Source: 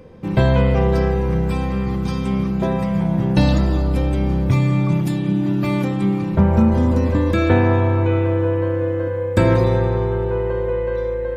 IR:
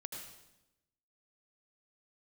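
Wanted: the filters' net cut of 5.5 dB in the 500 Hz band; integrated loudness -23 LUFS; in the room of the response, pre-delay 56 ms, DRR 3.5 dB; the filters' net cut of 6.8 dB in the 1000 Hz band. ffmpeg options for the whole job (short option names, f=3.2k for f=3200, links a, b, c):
-filter_complex "[0:a]equalizer=f=500:t=o:g=-5,equalizer=f=1k:t=o:g=-7,asplit=2[a][b];[1:a]atrim=start_sample=2205,adelay=56[c];[b][c]afir=irnorm=-1:irlink=0,volume=-1.5dB[d];[a][d]amix=inputs=2:normalize=0,volume=-3.5dB"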